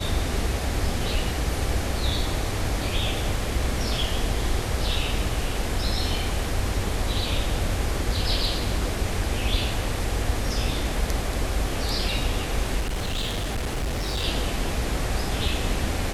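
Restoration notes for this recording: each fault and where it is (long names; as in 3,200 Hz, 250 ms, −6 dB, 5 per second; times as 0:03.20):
0:12.80–0:14.25: clipping −23.5 dBFS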